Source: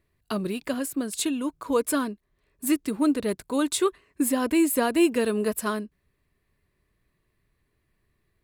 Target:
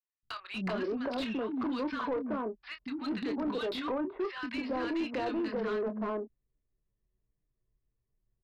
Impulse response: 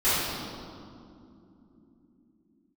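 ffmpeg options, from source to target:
-filter_complex "[0:a]anlmdn=2.51,adynamicequalizer=threshold=0.00447:dfrequency=3600:dqfactor=0.92:tfrequency=3600:tqfactor=0.92:attack=5:release=100:ratio=0.375:range=2:mode=cutabove:tftype=bell,acrossover=split=190|3300[link_01][link_02][link_03];[link_01]acompressor=threshold=-45dB:ratio=4[link_04];[link_02]acompressor=threshold=-35dB:ratio=4[link_05];[link_03]acompressor=threshold=-40dB:ratio=4[link_06];[link_04][link_05][link_06]amix=inputs=3:normalize=0,alimiter=level_in=8dB:limit=-24dB:level=0:latency=1:release=58,volume=-8dB,acrossover=split=260|1200[link_07][link_08][link_09];[link_07]adelay=230[link_10];[link_08]adelay=380[link_11];[link_10][link_11][link_09]amix=inputs=3:normalize=0,aresample=11025,volume=36dB,asoftclip=hard,volume=-36dB,aresample=44100,asplit=2[link_12][link_13];[link_13]adelay=27,volume=-10dB[link_14];[link_12][link_14]amix=inputs=2:normalize=0,asplit=2[link_15][link_16];[link_16]highpass=frequency=720:poles=1,volume=23dB,asoftclip=type=tanh:threshold=-25dB[link_17];[link_15][link_17]amix=inputs=2:normalize=0,lowpass=frequency=1500:poles=1,volume=-6dB,volume=2.5dB"

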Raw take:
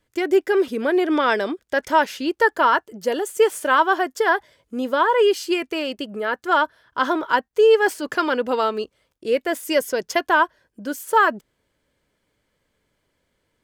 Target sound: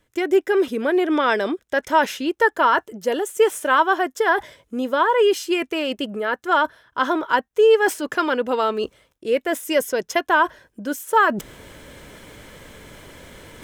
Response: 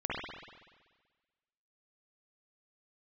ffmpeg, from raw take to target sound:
-af "bandreject=frequency=4600:width=8.1,areverse,acompressor=mode=upward:threshold=-19dB:ratio=2.5,areverse"

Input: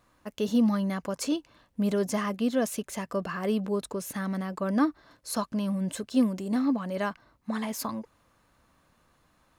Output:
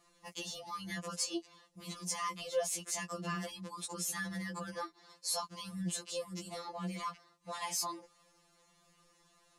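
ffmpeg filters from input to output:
ffmpeg -i in.wav -af "lowpass=7800,bass=frequency=250:gain=-5,treble=frequency=4000:gain=12,bandreject=frequency=1500:width=6.6,acompressor=threshold=-29dB:ratio=12,afftfilt=real='re*2.83*eq(mod(b,8),0)':imag='im*2.83*eq(mod(b,8),0)':win_size=2048:overlap=0.75" out.wav

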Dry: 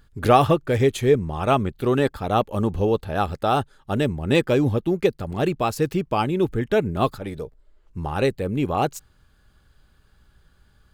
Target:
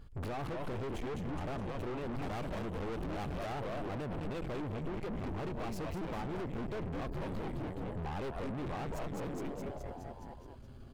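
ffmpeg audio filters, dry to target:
ffmpeg -i in.wav -filter_complex "[0:a]alimiter=limit=-10dB:level=0:latency=1:release=303,equalizer=frequency=1600:width=2.7:gain=-9.5,bandreject=frequency=3700:width=10,asplit=9[link_01][link_02][link_03][link_04][link_05][link_06][link_07][link_08][link_09];[link_02]adelay=210,afreqshift=-140,volume=-5dB[link_10];[link_03]adelay=420,afreqshift=-280,volume=-9.4dB[link_11];[link_04]adelay=630,afreqshift=-420,volume=-13.9dB[link_12];[link_05]adelay=840,afreqshift=-560,volume=-18.3dB[link_13];[link_06]adelay=1050,afreqshift=-700,volume=-22.7dB[link_14];[link_07]adelay=1260,afreqshift=-840,volume=-27.2dB[link_15];[link_08]adelay=1470,afreqshift=-980,volume=-31.6dB[link_16];[link_09]adelay=1680,afreqshift=-1120,volume=-36.1dB[link_17];[link_01][link_10][link_11][link_12][link_13][link_14][link_15][link_16][link_17]amix=inputs=9:normalize=0,acompressor=threshold=-26dB:ratio=6,aeval=exprs='(tanh(126*val(0)+0.45)-tanh(0.45))/126':channel_layout=same,asetnsamples=nb_out_samples=441:pad=0,asendcmd='2.22 highshelf g -4.5;3.52 highshelf g -11',highshelf=frequency=3800:gain=-12,volume=5dB" out.wav

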